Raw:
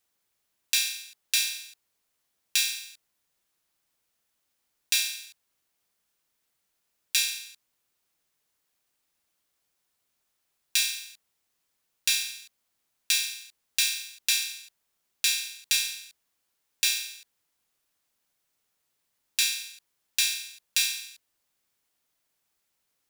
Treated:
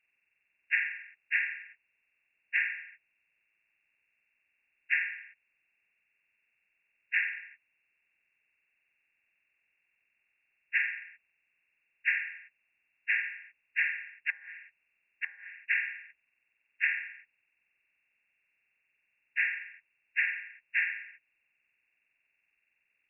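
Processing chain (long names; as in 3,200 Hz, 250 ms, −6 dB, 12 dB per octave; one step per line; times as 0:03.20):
hearing-aid frequency compression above 1,400 Hz 4 to 1
0:14.29–0:15.56: treble cut that deepens with the level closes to 580 Hz, closed at −19.5 dBFS
level −7 dB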